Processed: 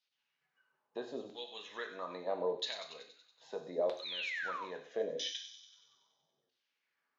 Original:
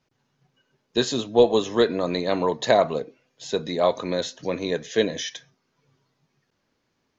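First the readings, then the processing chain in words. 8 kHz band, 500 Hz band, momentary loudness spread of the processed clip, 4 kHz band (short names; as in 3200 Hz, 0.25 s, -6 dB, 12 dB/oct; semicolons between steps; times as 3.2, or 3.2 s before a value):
n/a, -17.0 dB, 13 LU, -11.0 dB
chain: compressor 2:1, threshold -29 dBFS, peak gain reduction 10 dB; painted sound fall, 4.02–4.65, 900–4300 Hz -37 dBFS; LFO band-pass saw down 0.77 Hz 460–4000 Hz; on a send: thin delay 94 ms, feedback 64%, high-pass 4700 Hz, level -5.5 dB; on the sum: non-linear reverb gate 0.17 s falling, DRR 4.5 dB; gain -3 dB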